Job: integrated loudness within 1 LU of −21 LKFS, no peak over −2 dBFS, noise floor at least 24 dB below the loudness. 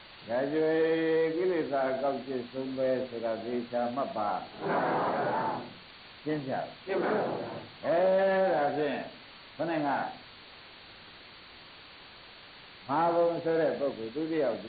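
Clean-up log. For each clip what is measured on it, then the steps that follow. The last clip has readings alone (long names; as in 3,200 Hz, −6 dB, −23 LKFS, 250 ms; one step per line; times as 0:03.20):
background noise floor −51 dBFS; target noise floor −55 dBFS; integrated loudness −30.5 LKFS; sample peak −18.0 dBFS; target loudness −21.0 LKFS
→ noise reduction from a noise print 6 dB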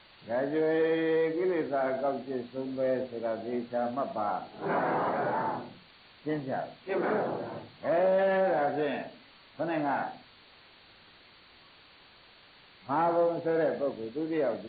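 background noise floor −57 dBFS; integrated loudness −30.5 LKFS; sample peak −18.0 dBFS; target loudness −21.0 LKFS
→ level +9.5 dB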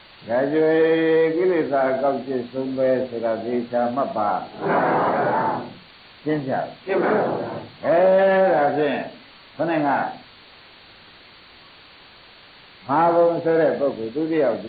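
integrated loudness −21.0 LKFS; sample peak −8.5 dBFS; background noise floor −48 dBFS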